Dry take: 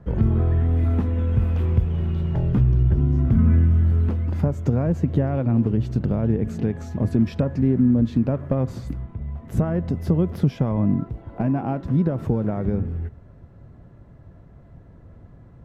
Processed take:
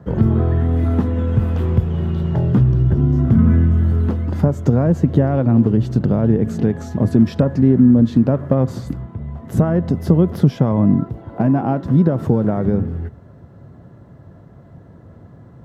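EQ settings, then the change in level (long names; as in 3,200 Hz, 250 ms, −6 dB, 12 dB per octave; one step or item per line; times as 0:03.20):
high-pass filter 100 Hz 12 dB per octave
parametric band 2,400 Hz −6.5 dB 0.43 octaves
+7.0 dB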